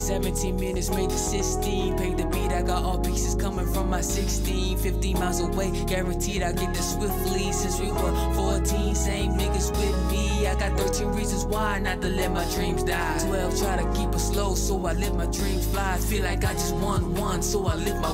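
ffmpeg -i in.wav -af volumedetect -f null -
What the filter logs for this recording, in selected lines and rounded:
mean_volume: -24.5 dB
max_volume: -13.1 dB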